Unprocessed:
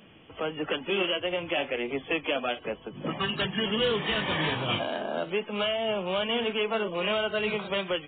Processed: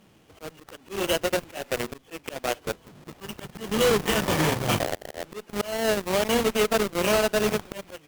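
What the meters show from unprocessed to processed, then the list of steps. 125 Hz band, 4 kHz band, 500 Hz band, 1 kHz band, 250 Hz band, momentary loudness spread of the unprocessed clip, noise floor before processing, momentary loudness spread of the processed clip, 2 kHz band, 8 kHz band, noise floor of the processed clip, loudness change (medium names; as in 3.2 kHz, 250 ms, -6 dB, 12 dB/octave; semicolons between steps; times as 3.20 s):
+5.0 dB, -2.0 dB, +3.0 dB, +3.0 dB, +3.5 dB, 6 LU, -50 dBFS, 17 LU, 0.0 dB, no reading, -57 dBFS, +3.5 dB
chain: square wave that keeps the level; peaking EQ 260 Hz -2.5 dB 0.23 oct; Chebyshev shaper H 5 -30 dB, 7 -13 dB, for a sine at -15.5 dBFS; slow attack 240 ms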